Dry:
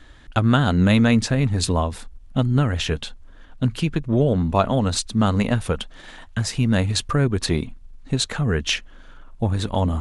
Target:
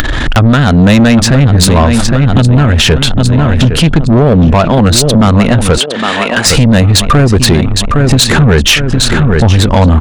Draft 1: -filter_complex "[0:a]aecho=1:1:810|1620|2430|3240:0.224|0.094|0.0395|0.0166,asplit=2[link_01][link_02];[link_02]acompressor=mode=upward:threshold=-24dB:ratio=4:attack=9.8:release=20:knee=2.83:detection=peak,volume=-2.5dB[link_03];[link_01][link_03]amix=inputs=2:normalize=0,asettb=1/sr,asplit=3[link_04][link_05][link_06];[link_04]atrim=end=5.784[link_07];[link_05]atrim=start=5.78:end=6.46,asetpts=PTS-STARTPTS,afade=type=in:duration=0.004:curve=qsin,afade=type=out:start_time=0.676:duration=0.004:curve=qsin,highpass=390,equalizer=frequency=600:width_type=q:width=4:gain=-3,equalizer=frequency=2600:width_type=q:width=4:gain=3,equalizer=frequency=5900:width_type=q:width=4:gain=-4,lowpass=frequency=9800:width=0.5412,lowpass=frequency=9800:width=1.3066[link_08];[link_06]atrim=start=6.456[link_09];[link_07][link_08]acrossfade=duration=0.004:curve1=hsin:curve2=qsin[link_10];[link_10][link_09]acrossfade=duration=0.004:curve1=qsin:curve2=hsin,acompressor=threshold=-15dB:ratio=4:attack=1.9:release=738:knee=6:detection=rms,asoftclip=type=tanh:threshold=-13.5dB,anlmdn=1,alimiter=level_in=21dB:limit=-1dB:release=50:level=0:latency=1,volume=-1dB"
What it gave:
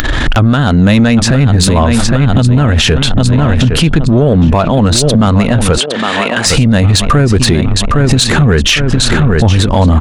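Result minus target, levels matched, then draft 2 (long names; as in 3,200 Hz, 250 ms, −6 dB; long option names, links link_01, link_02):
soft clipping: distortion −9 dB
-filter_complex "[0:a]aecho=1:1:810|1620|2430|3240:0.224|0.094|0.0395|0.0166,asplit=2[link_01][link_02];[link_02]acompressor=mode=upward:threshold=-24dB:ratio=4:attack=9.8:release=20:knee=2.83:detection=peak,volume=-2.5dB[link_03];[link_01][link_03]amix=inputs=2:normalize=0,asettb=1/sr,asplit=3[link_04][link_05][link_06];[link_04]atrim=end=5.784[link_07];[link_05]atrim=start=5.78:end=6.46,asetpts=PTS-STARTPTS,afade=type=in:duration=0.004:curve=qsin,afade=type=out:start_time=0.676:duration=0.004:curve=qsin,highpass=390,equalizer=frequency=600:width_type=q:width=4:gain=-3,equalizer=frequency=2600:width_type=q:width=4:gain=3,equalizer=frequency=5900:width_type=q:width=4:gain=-4,lowpass=frequency=9800:width=0.5412,lowpass=frequency=9800:width=1.3066[link_08];[link_06]atrim=start=6.456[link_09];[link_07][link_08]acrossfade=duration=0.004:curve1=hsin:curve2=qsin[link_10];[link_10][link_09]acrossfade=duration=0.004:curve1=qsin:curve2=hsin,acompressor=threshold=-15dB:ratio=4:attack=1.9:release=738:knee=6:detection=rms,asoftclip=type=tanh:threshold=-21dB,anlmdn=1,alimiter=level_in=21dB:limit=-1dB:release=50:level=0:latency=1,volume=-1dB"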